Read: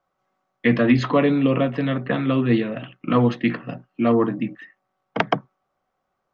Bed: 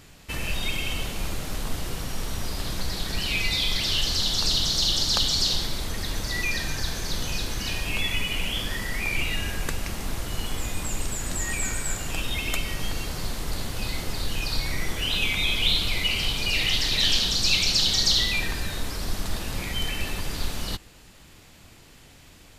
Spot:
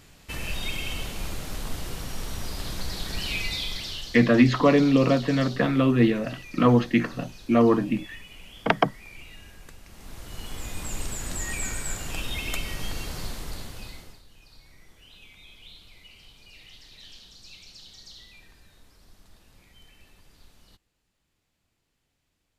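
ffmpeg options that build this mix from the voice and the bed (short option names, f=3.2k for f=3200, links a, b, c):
-filter_complex "[0:a]adelay=3500,volume=-0.5dB[a];[1:a]volume=12.5dB,afade=t=out:st=3.3:d=0.93:silence=0.16788,afade=t=in:st=9.87:d=1.13:silence=0.16788,afade=t=out:st=13.19:d=1.03:silence=0.0707946[b];[a][b]amix=inputs=2:normalize=0"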